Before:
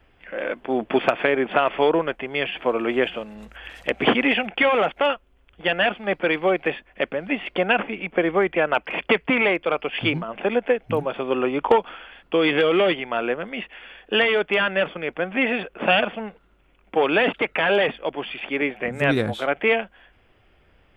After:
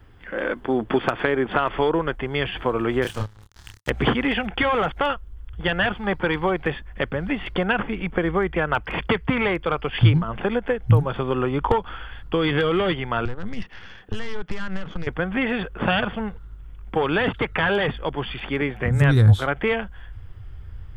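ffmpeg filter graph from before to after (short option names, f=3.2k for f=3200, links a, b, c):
-filter_complex "[0:a]asettb=1/sr,asplit=3[a][b][c];[a]atrim=end=3.024[d];[b]atrim=start=3.02:end=3.9,asetpts=PTS-STARTPTS,afade=t=in:d=0.004:c=qsin,afade=t=out:st=0.876:d=0.004:c=qsin,aeval=exprs='sgn(val(0))*max(abs(val(0))-0.0178,0)':c=same,asplit=2[e][f];[f]adelay=28,volume=-4dB[g];[e][g]amix=inputs=2:normalize=0,atrim=end_sample=38808[h];[c]atrim=start=3.896[i];[d][h]acrossfade=d=0.004:c1=hsin:c2=qsin[j];[j][i]acrossfade=d=0.004:c1=qsin:c2=hsin,asettb=1/sr,asplit=3[k][l][m];[k]atrim=end=5.944[n];[l]atrim=start=5.94:end=6.58,asetpts=PTS-STARTPTS,afade=t=in:d=0.004:c=qsin,afade=t=out:st=0.636:d=0.004:c=qsin,equalizer=f=920:t=o:w=0.35:g=6.5,bandreject=f=640:w=14[o];[m]atrim=start=6.576[p];[n][o]acrossfade=d=0.004:c1=hsin:c2=qsin[q];[q][p]acrossfade=d=0.004:c1=qsin:c2=hsin,asettb=1/sr,asplit=3[r][s][t];[r]atrim=end=13.254[u];[s]atrim=start=13.25:end=15.07,asetpts=PTS-STARTPTS,afade=t=in:d=0.004:c=qsin,afade=t=out:st=1.816:d=0.004:c=qsin,acompressor=threshold=-32dB:ratio=5:attack=3.2:release=140:knee=1:detection=peak,highpass=f=180:t=q:w=2.2,aeval=exprs='(tanh(22.4*val(0)+0.6)-tanh(0.6))/22.4':c=same[v];[t]atrim=start=15.066[w];[u][v]acrossfade=d=0.004:c1=hsin:c2=qsin[x];[x][w]acrossfade=d=0.004:c1=qsin:c2=hsin,equalizer=f=100:t=o:w=0.67:g=9,equalizer=f=630:t=o:w=0.67:g=-9,equalizer=f=2.5k:t=o:w=0.67:g=-11,acompressor=threshold=-26dB:ratio=2,asubboost=boost=7:cutoff=97,volume=7dB"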